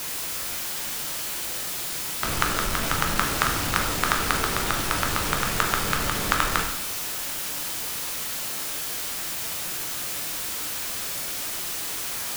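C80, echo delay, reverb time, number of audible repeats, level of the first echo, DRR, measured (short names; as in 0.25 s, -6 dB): 8.5 dB, none, 0.80 s, none, none, 1.5 dB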